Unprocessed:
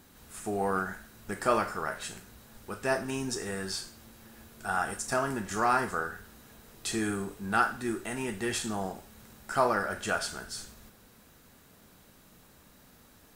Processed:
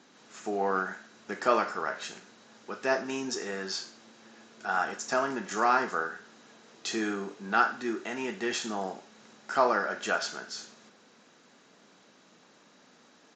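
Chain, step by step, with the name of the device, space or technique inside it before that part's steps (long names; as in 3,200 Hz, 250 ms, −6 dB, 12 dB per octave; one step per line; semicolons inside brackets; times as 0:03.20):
high-pass filter 180 Hz 12 dB per octave
Bluetooth headset (high-pass filter 190 Hz 12 dB per octave; downsampling to 16,000 Hz; level +1.5 dB; SBC 64 kbit/s 16,000 Hz)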